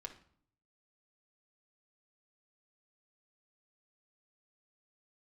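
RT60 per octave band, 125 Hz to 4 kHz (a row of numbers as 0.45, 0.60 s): 0.90, 0.75, 0.55, 0.55, 0.50, 0.45 s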